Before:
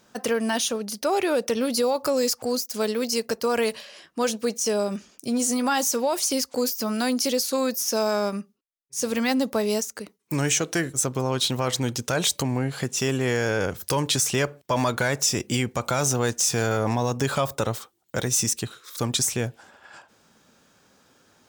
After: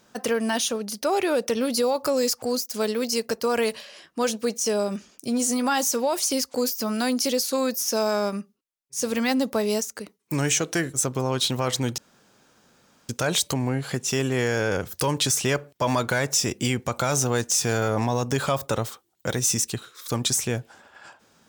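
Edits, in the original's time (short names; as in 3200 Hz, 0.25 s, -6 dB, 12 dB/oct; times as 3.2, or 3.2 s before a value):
11.98 insert room tone 1.11 s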